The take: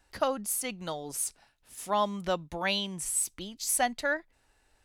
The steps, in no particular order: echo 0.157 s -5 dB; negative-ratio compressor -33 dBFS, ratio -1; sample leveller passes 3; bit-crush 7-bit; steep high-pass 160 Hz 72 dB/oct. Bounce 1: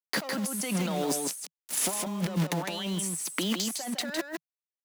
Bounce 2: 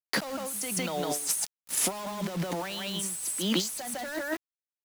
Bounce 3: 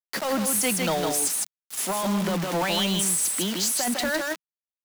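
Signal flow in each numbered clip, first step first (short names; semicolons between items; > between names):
sample leveller > bit-crush > steep high-pass > negative-ratio compressor > echo; echo > sample leveller > steep high-pass > negative-ratio compressor > bit-crush; negative-ratio compressor > echo > bit-crush > steep high-pass > sample leveller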